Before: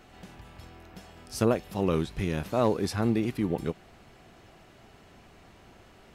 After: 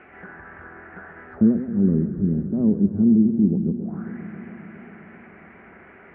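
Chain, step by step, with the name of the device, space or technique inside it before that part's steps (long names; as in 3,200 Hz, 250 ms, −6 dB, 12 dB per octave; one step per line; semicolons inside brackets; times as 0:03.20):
envelope filter bass rig (envelope-controlled low-pass 210–2,700 Hz down, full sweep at −29 dBFS; loudspeaker in its box 84–2,100 Hz, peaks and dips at 120 Hz −10 dB, 390 Hz +6 dB, 1,500 Hz +6 dB)
feedback echo with a swinging delay time 135 ms, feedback 80%, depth 162 cents, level −12.5 dB
level +3.5 dB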